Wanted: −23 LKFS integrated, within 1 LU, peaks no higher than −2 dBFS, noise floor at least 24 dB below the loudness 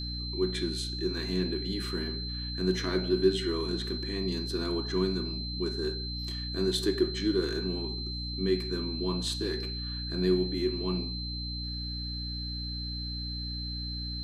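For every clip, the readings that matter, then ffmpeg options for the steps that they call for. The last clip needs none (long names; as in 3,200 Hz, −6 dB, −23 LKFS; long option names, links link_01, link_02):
mains hum 60 Hz; hum harmonics up to 300 Hz; level of the hum −35 dBFS; interfering tone 4,100 Hz; level of the tone −37 dBFS; integrated loudness −31.5 LKFS; sample peak −12.0 dBFS; target loudness −23.0 LKFS
→ -af "bandreject=frequency=60:width_type=h:width=6,bandreject=frequency=120:width_type=h:width=6,bandreject=frequency=180:width_type=h:width=6,bandreject=frequency=240:width_type=h:width=6,bandreject=frequency=300:width_type=h:width=6"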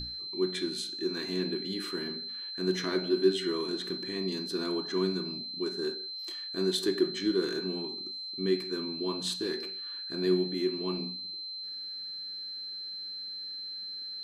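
mains hum none found; interfering tone 4,100 Hz; level of the tone −37 dBFS
→ -af "bandreject=frequency=4100:width=30"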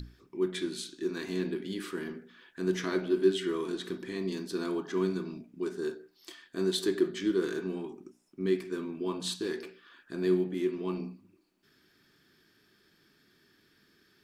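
interfering tone none found; integrated loudness −33.0 LKFS; sample peak −14.0 dBFS; target loudness −23.0 LKFS
→ -af "volume=10dB"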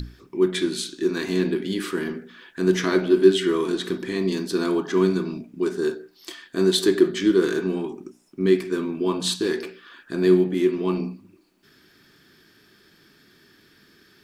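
integrated loudness −23.0 LKFS; sample peak −4.0 dBFS; background noise floor −57 dBFS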